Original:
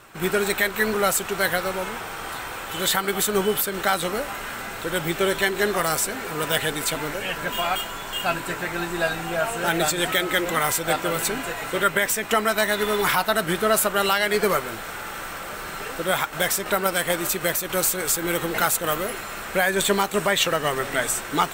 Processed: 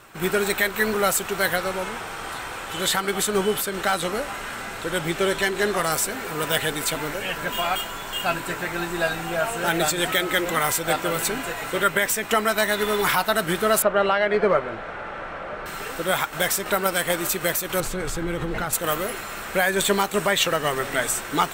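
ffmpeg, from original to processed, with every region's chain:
-filter_complex "[0:a]asettb=1/sr,asplit=3[s0][s1][s2];[s0]atrim=end=1.564[s3];[s1]atrim=start=1.56:end=5.92,asetpts=PTS-STARTPTS,afade=t=in:d=0.004:c=qsin,afade=t=out:st=4.356:d=0.004:c=qsin,lowpass=12000,asoftclip=type=hard:threshold=0.211[s4];[s2]atrim=start=5.916[s5];[s3][s4]acrossfade=d=0.004:c1=hsin:c2=qsin[s6];[s6][s5]acrossfade=d=0.004:c1=qsin:c2=hsin,asettb=1/sr,asplit=3[s7][s8][s9];[s7]atrim=end=13.824[s10];[s8]atrim=start=13.82:end=15.66,asetpts=PTS-STARTPTS,afade=t=in:d=0.004:c=qsin,afade=t=out:st=1.836:d=0.004:c=qsin,lowpass=2200,equalizer=f=590:t=o:w=0.51:g=6.5[s11];[s9]atrim=start=15.656[s12];[s10][s11]acrossfade=d=0.004:c1=hsin:c2=qsin[s13];[s13][s12]acrossfade=d=0.004:c1=qsin:c2=hsin,asettb=1/sr,asplit=3[s14][s15][s16];[s14]atrim=end=17.804[s17];[s15]atrim=start=17.8:end=18.73,asetpts=PTS-STARTPTS,afade=t=in:d=0.004:c=qsin,afade=t=out:st=0.926:d=0.004:c=qsin,aemphasis=mode=reproduction:type=bsi,acompressor=threshold=0.0708:ratio=4:attack=3.2:release=140:knee=1:detection=peak[s18];[s16]atrim=start=18.726[s19];[s17][s18]acrossfade=d=0.004:c1=hsin:c2=qsin[s20];[s20][s19]acrossfade=d=0.004:c1=qsin:c2=hsin"

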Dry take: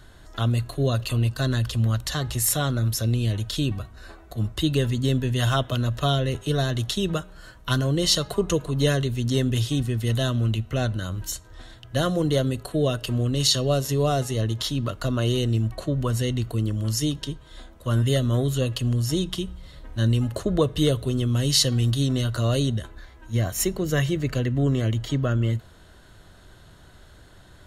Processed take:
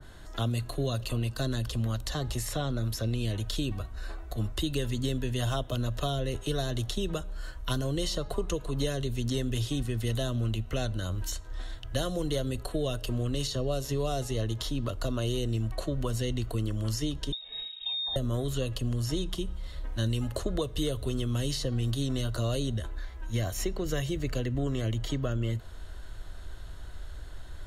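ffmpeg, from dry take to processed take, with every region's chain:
-filter_complex "[0:a]asettb=1/sr,asplit=3[s0][s1][s2];[s0]atrim=end=17.324[s3];[s1]atrim=start=17.32:end=18.16,asetpts=PTS-STARTPTS,afade=t=in:d=0.004:c=qsin,afade=t=out:st=0.836:d=0.004:c=qsin,acompressor=threshold=0.0316:ratio=2.5:attack=3.2:release=140:knee=1:detection=peak,lowshelf=f=210:t=q:w=3:g=8,lowpass=f=3200:t=q:w=0.5098,lowpass=f=3200:t=q:w=0.6013,lowpass=f=3200:t=q:w=0.9,lowpass=f=3200:t=q:w=2.563,afreqshift=-3800[s4];[s2]atrim=start=18.156[s5];[s3][s4]acrossfade=d=0.004:c1=hsin:c2=qsin[s6];[s6][s5]acrossfade=d=0.004:c1=qsin:c2=hsin,asubboost=boost=7.5:cutoff=55,acrossover=split=140|930|2600|5800[s7][s8][s9][s10][s11];[s7]acompressor=threshold=0.02:ratio=4[s12];[s8]acompressor=threshold=0.0316:ratio=4[s13];[s9]acompressor=threshold=0.00447:ratio=4[s14];[s10]acompressor=threshold=0.0126:ratio=4[s15];[s11]acompressor=threshold=0.00794:ratio=4[s16];[s12][s13][s14][s15][s16]amix=inputs=5:normalize=0,adynamicequalizer=threshold=0.00562:dfrequency=1600:dqfactor=0.7:tfrequency=1600:tqfactor=0.7:attack=5:release=100:ratio=0.375:range=1.5:mode=cutabove:tftype=highshelf"

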